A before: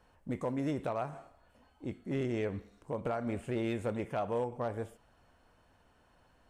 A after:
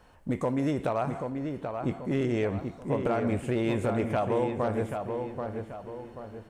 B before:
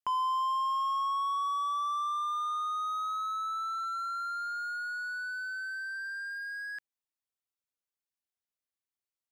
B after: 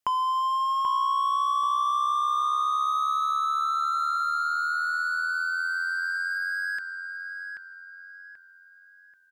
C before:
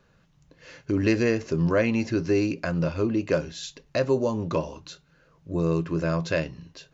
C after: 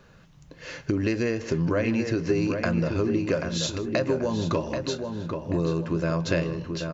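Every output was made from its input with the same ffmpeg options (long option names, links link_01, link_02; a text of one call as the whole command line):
ffmpeg -i in.wav -filter_complex "[0:a]asplit=2[link_01][link_02];[link_02]aecho=0:1:158:0.0708[link_03];[link_01][link_03]amix=inputs=2:normalize=0,acompressor=threshold=-31dB:ratio=6,asplit=2[link_04][link_05];[link_05]adelay=784,lowpass=frequency=2600:poles=1,volume=-5.5dB,asplit=2[link_06][link_07];[link_07]adelay=784,lowpass=frequency=2600:poles=1,volume=0.43,asplit=2[link_08][link_09];[link_09]adelay=784,lowpass=frequency=2600:poles=1,volume=0.43,asplit=2[link_10][link_11];[link_11]adelay=784,lowpass=frequency=2600:poles=1,volume=0.43,asplit=2[link_12][link_13];[link_13]adelay=784,lowpass=frequency=2600:poles=1,volume=0.43[link_14];[link_06][link_08][link_10][link_12][link_14]amix=inputs=5:normalize=0[link_15];[link_04][link_15]amix=inputs=2:normalize=0,volume=8dB" out.wav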